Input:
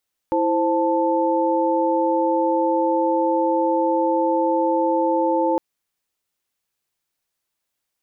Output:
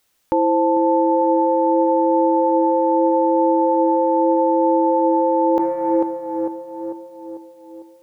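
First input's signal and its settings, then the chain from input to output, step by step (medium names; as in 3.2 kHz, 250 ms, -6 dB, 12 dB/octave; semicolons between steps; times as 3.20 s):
chord E4/C5/A5 sine, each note -21 dBFS 5.26 s
tape echo 448 ms, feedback 64%, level -11 dB, low-pass 1 kHz; in parallel at +2.5 dB: compressor with a negative ratio -29 dBFS, ratio -1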